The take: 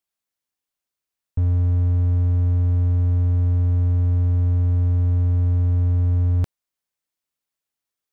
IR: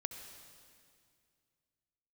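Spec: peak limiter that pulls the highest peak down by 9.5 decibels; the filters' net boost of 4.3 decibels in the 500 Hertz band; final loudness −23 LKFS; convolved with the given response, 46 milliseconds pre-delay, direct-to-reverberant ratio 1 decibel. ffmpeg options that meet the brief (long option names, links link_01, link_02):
-filter_complex "[0:a]equalizer=frequency=500:width_type=o:gain=5,alimiter=limit=-22dB:level=0:latency=1,asplit=2[link_01][link_02];[1:a]atrim=start_sample=2205,adelay=46[link_03];[link_02][link_03]afir=irnorm=-1:irlink=0,volume=0.5dB[link_04];[link_01][link_04]amix=inputs=2:normalize=0,volume=1.5dB"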